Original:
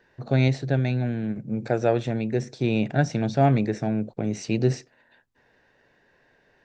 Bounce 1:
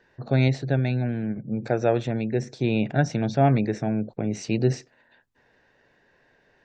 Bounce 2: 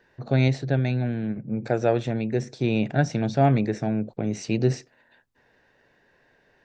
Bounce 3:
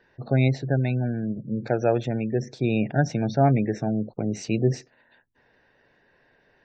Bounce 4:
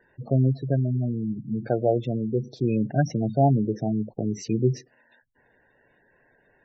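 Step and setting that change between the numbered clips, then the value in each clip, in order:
gate on every frequency bin, under each frame's peak: −45, −60, −30, −15 decibels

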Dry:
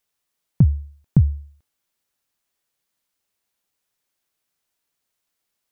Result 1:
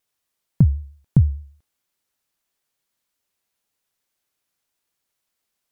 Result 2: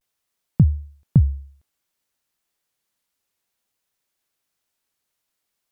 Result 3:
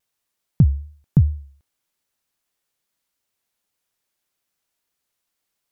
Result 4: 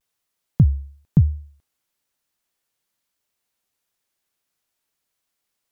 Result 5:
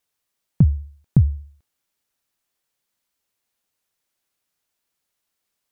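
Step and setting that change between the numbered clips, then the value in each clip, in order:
pitch vibrato, speed: 6.6, 0.55, 2.5, 1, 15 Hertz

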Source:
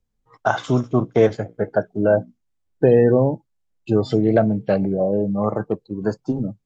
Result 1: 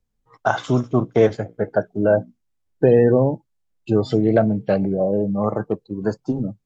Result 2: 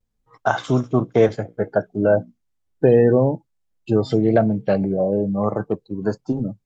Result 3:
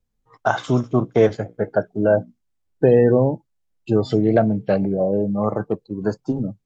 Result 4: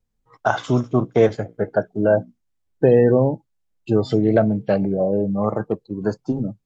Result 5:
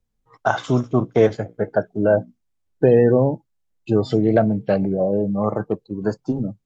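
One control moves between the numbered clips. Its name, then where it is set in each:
pitch vibrato, speed: 15, 0.31, 2.1, 1.1, 8.7 Hertz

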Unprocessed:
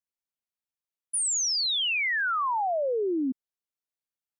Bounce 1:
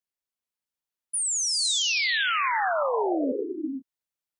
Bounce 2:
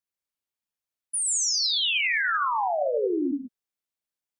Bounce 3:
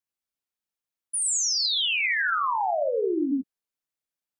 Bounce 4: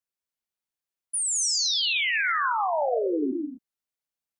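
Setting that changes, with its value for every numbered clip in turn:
reverb whose tail is shaped and stops, gate: 510, 170, 120, 270 milliseconds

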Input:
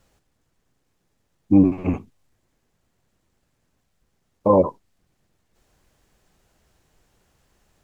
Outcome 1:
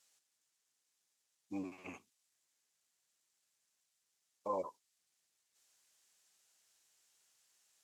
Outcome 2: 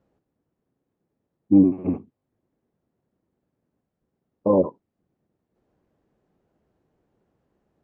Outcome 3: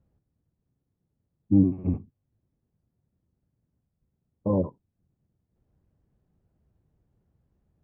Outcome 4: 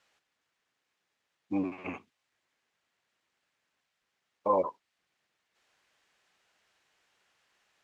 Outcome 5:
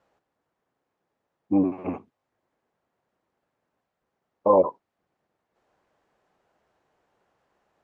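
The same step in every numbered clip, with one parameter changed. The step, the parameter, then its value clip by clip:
resonant band-pass, frequency: 7,800, 300, 110, 2,400, 790 Hertz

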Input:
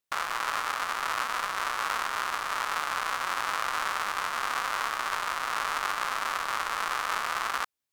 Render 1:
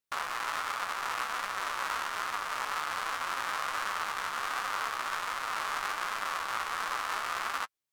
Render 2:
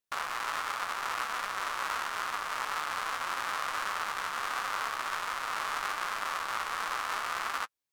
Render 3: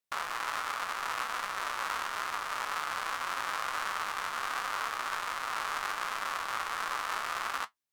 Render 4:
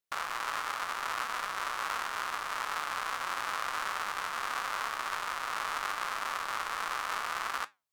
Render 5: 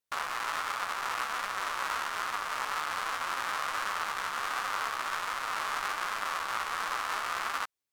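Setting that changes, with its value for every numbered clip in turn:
flanger, regen: +20, −23, +59, −75, 0%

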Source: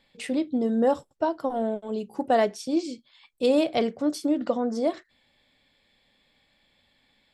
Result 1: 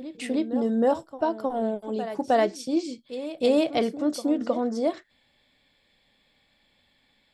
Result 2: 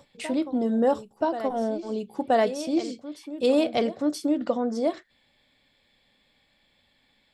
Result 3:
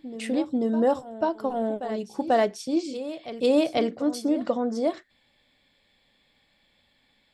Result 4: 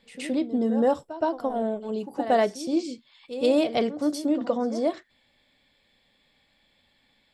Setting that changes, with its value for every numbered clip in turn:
backwards echo, delay time: 314, 977, 490, 120 milliseconds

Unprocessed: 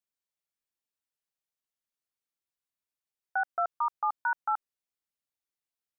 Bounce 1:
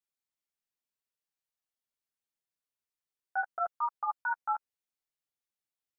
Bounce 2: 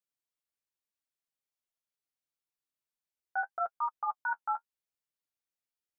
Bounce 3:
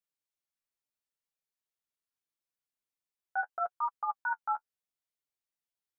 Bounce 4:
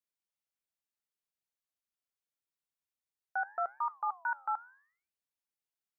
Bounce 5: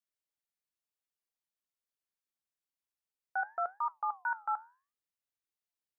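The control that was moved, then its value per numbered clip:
flanger, regen: −2, −27, +21, −89, +82%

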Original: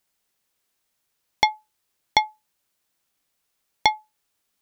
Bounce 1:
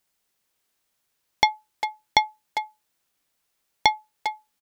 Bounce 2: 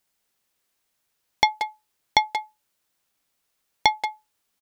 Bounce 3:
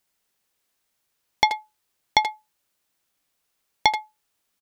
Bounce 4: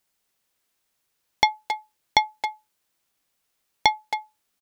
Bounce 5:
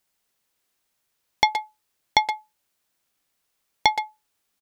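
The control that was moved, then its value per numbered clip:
far-end echo of a speakerphone, delay time: 400, 180, 80, 270, 120 milliseconds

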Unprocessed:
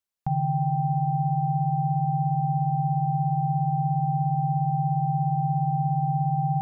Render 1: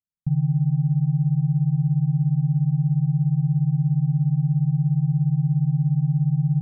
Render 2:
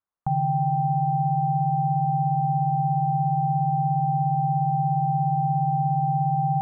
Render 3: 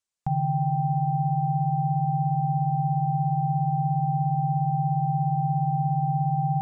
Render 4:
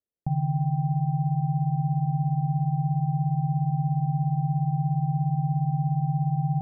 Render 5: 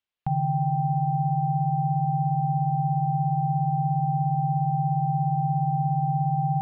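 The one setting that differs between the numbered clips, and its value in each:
low-pass with resonance, frequency: 170, 1,200, 7,800, 440, 3,100 Hertz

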